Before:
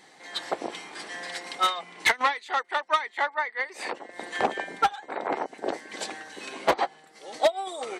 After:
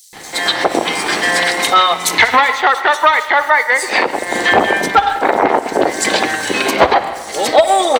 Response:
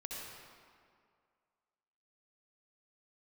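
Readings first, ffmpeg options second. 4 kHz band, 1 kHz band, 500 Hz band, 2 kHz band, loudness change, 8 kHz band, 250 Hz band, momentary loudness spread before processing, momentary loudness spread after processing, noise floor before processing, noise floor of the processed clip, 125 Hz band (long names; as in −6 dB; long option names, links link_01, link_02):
+16.0 dB, +15.0 dB, +15.5 dB, +16.5 dB, +15.5 dB, +19.5 dB, +18.0 dB, 11 LU, 5 LU, −55 dBFS, −28 dBFS, +19.5 dB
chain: -filter_complex "[0:a]equalizer=frequency=76:width=1.2:gain=9,asplit=2[link_01][link_02];[link_02]acompressor=threshold=-38dB:ratio=6,volume=1dB[link_03];[link_01][link_03]amix=inputs=2:normalize=0,aeval=exprs='sgn(val(0))*max(abs(val(0))-0.00266,0)':channel_layout=same,acrossover=split=5200[link_04][link_05];[link_04]adelay=130[link_06];[link_06][link_05]amix=inputs=2:normalize=0,asplit=2[link_07][link_08];[1:a]atrim=start_sample=2205,asetrate=74970,aresample=44100,adelay=59[link_09];[link_08][link_09]afir=irnorm=-1:irlink=0,volume=-10.5dB[link_10];[link_07][link_10]amix=inputs=2:normalize=0,alimiter=level_in=20dB:limit=-1dB:release=50:level=0:latency=1,volume=-1dB"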